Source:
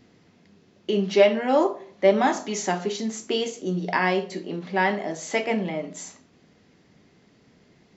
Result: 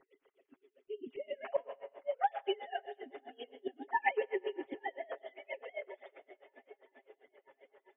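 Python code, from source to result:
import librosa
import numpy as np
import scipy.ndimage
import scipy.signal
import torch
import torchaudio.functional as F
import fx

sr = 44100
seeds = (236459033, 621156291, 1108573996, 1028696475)

y = fx.sine_speech(x, sr)
y = fx.auto_swell(y, sr, attack_ms=546.0)
y = y + 0.87 * np.pad(y, (int(7.4 * sr / 1000.0), 0))[:len(y)]
y = fx.echo_swing(y, sr, ms=975, ratio=1.5, feedback_pct=63, wet_db=-23)
y = fx.rev_freeverb(y, sr, rt60_s=2.3, hf_ratio=0.85, predelay_ms=75, drr_db=12.5)
y = y * 10.0 ** (-27 * (0.5 - 0.5 * np.cos(2.0 * np.pi * 7.6 * np.arange(len(y)) / sr)) / 20.0)
y = y * librosa.db_to_amplitude(1.0)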